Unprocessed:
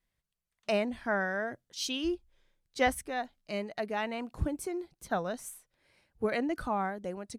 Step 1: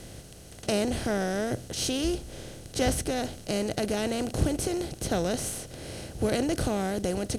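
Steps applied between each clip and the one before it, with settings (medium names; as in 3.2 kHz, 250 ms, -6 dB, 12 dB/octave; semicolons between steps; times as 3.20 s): spectral levelling over time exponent 0.4; graphic EQ 125/1000/2000/8000 Hz +7/-10/-8/+5 dB; trim +1 dB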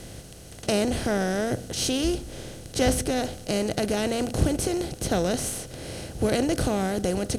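reverberation RT60 1.1 s, pre-delay 3 ms, DRR 19 dB; trim +3 dB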